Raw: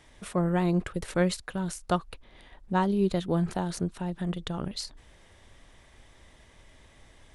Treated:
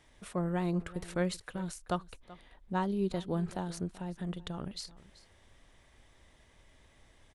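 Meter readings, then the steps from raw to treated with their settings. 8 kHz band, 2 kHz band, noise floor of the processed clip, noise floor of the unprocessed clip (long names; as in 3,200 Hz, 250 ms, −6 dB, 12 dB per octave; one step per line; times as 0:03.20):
−6.5 dB, −6.5 dB, −64 dBFS, −57 dBFS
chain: single-tap delay 383 ms −19 dB
level −6.5 dB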